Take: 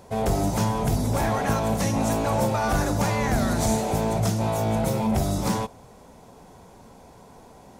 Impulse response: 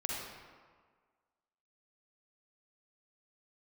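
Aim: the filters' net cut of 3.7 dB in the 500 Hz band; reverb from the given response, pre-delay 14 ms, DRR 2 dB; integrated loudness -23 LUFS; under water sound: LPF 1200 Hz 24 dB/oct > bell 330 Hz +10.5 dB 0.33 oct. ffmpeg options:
-filter_complex "[0:a]equalizer=f=500:t=o:g=-7,asplit=2[a][b];[1:a]atrim=start_sample=2205,adelay=14[c];[b][c]afir=irnorm=-1:irlink=0,volume=-5.5dB[d];[a][d]amix=inputs=2:normalize=0,lowpass=f=1.2k:w=0.5412,lowpass=f=1.2k:w=1.3066,equalizer=f=330:t=o:w=0.33:g=10.5,volume=1dB"

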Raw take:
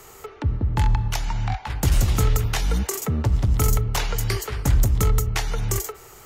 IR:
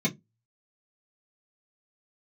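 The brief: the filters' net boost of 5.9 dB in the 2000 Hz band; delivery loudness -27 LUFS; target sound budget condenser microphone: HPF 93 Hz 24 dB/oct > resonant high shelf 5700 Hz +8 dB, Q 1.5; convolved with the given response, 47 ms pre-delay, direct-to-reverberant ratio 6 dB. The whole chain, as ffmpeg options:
-filter_complex "[0:a]equalizer=f=2k:t=o:g=8,asplit=2[a][b];[1:a]atrim=start_sample=2205,adelay=47[c];[b][c]afir=irnorm=-1:irlink=0,volume=-15dB[d];[a][d]amix=inputs=2:normalize=0,highpass=f=93:w=0.5412,highpass=f=93:w=1.3066,highshelf=f=5.7k:t=q:w=1.5:g=8,volume=-5.5dB"

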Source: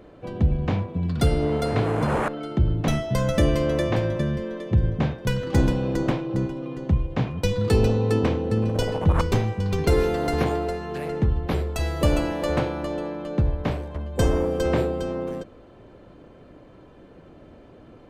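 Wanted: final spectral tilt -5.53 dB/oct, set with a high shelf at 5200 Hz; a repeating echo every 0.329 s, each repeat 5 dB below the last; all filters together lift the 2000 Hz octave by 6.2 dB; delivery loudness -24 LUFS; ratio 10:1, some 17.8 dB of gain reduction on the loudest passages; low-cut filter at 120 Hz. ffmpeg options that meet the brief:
-af "highpass=120,equalizer=f=2k:t=o:g=8.5,highshelf=f=5.2k:g=-5.5,acompressor=threshold=-36dB:ratio=10,aecho=1:1:329|658|987|1316|1645|1974|2303:0.562|0.315|0.176|0.0988|0.0553|0.031|0.0173,volume=15dB"

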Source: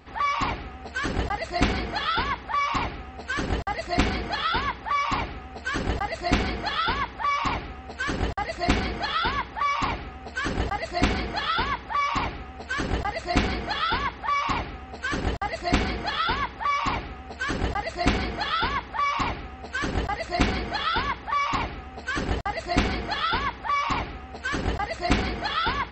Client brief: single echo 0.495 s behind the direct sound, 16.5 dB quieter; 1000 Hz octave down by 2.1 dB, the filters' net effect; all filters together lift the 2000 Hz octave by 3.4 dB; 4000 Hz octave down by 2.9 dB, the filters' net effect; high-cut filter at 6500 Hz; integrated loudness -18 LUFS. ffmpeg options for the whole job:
-af "lowpass=6.5k,equalizer=f=1k:t=o:g=-4.5,equalizer=f=2k:t=o:g=7,equalizer=f=4k:t=o:g=-6,aecho=1:1:495:0.15,volume=8.5dB"

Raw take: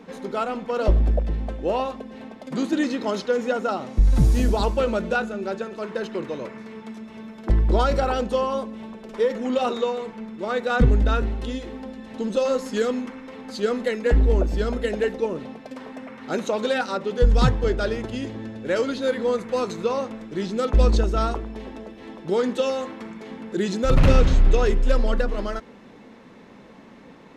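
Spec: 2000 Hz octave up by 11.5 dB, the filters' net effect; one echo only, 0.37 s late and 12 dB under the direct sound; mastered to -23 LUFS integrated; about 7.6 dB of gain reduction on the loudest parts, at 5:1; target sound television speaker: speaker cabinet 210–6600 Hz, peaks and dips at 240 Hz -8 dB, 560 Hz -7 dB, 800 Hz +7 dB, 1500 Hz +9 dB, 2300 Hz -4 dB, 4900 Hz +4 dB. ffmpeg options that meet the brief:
-af "equalizer=f=2k:t=o:g=8,acompressor=threshold=-19dB:ratio=5,highpass=f=210:w=0.5412,highpass=f=210:w=1.3066,equalizer=f=240:t=q:w=4:g=-8,equalizer=f=560:t=q:w=4:g=-7,equalizer=f=800:t=q:w=4:g=7,equalizer=f=1.5k:t=q:w=4:g=9,equalizer=f=2.3k:t=q:w=4:g=-4,equalizer=f=4.9k:t=q:w=4:g=4,lowpass=f=6.6k:w=0.5412,lowpass=f=6.6k:w=1.3066,aecho=1:1:370:0.251,volume=3dB"

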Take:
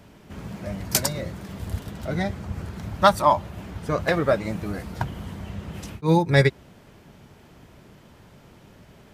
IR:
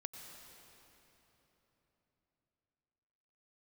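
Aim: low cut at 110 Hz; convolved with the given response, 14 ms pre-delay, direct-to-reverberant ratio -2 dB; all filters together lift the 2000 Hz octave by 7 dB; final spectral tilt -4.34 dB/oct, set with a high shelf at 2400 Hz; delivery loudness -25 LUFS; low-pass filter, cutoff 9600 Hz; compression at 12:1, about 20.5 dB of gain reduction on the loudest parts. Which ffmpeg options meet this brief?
-filter_complex "[0:a]highpass=110,lowpass=9.6k,equalizer=f=2k:t=o:g=4.5,highshelf=f=2.4k:g=8.5,acompressor=threshold=-30dB:ratio=12,asplit=2[a][b];[1:a]atrim=start_sample=2205,adelay=14[c];[b][c]afir=irnorm=-1:irlink=0,volume=5dB[d];[a][d]amix=inputs=2:normalize=0,volume=7dB"

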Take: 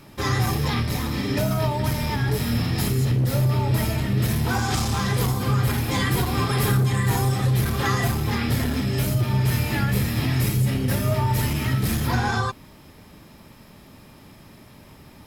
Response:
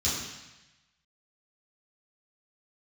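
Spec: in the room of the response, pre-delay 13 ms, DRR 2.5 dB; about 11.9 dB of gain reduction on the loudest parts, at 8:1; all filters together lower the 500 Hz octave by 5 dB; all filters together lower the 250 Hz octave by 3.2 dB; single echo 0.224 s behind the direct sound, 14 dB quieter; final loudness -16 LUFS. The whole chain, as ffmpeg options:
-filter_complex "[0:a]equalizer=f=250:t=o:g=-3.5,equalizer=f=500:t=o:g=-5.5,acompressor=threshold=-31dB:ratio=8,aecho=1:1:224:0.2,asplit=2[a][b];[1:a]atrim=start_sample=2205,adelay=13[c];[b][c]afir=irnorm=-1:irlink=0,volume=-11dB[d];[a][d]amix=inputs=2:normalize=0,volume=12.5dB"

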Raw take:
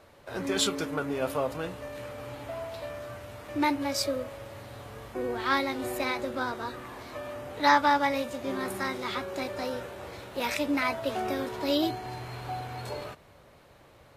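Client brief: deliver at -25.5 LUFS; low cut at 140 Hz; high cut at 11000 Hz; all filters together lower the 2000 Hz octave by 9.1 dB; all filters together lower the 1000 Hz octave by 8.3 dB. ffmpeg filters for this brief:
-af "highpass=140,lowpass=11k,equalizer=f=1k:t=o:g=-8.5,equalizer=f=2k:t=o:g=-8.5,volume=9dB"

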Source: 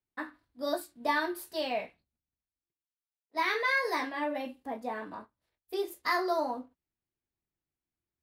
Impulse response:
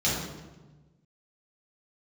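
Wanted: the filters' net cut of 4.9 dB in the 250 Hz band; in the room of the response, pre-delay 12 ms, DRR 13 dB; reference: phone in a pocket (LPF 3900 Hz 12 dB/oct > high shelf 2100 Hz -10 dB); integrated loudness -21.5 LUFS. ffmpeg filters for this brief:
-filter_complex "[0:a]equalizer=f=250:t=o:g=-6.5,asplit=2[a][b];[1:a]atrim=start_sample=2205,adelay=12[c];[b][c]afir=irnorm=-1:irlink=0,volume=-25dB[d];[a][d]amix=inputs=2:normalize=0,lowpass=3.9k,highshelf=f=2.1k:g=-10,volume=14dB"

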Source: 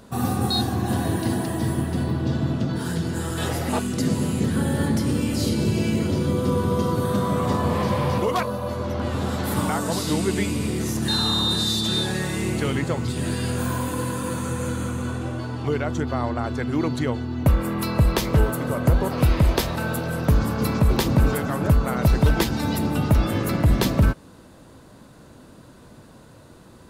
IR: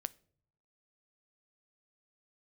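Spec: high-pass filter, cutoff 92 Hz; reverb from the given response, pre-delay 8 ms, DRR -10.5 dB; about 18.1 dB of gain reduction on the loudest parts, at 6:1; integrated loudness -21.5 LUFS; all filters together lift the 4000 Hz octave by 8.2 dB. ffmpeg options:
-filter_complex "[0:a]highpass=92,equalizer=f=4k:t=o:g=9,acompressor=threshold=-34dB:ratio=6,asplit=2[a][b];[1:a]atrim=start_sample=2205,adelay=8[c];[b][c]afir=irnorm=-1:irlink=0,volume=12dB[d];[a][d]amix=inputs=2:normalize=0,volume=3.5dB"

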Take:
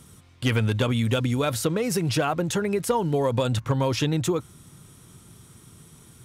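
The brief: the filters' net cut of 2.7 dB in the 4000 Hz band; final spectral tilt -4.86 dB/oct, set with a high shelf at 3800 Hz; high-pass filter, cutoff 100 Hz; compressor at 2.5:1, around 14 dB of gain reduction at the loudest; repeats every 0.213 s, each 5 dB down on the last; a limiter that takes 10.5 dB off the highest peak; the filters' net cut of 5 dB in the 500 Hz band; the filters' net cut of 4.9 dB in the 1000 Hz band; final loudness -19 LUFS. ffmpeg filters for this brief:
-af "highpass=100,equalizer=f=500:t=o:g=-5,equalizer=f=1k:t=o:g=-5,highshelf=f=3.8k:g=8,equalizer=f=4k:t=o:g=-8.5,acompressor=threshold=-43dB:ratio=2.5,alimiter=level_in=9dB:limit=-24dB:level=0:latency=1,volume=-9dB,aecho=1:1:213|426|639|852|1065|1278|1491:0.562|0.315|0.176|0.0988|0.0553|0.031|0.0173,volume=22.5dB"

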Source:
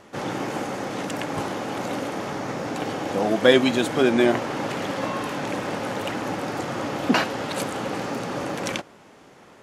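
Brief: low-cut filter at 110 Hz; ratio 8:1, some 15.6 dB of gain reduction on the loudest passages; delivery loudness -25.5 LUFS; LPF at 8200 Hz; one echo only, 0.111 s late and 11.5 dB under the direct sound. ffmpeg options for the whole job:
-af "highpass=110,lowpass=8.2k,acompressor=threshold=-27dB:ratio=8,aecho=1:1:111:0.266,volume=5.5dB"

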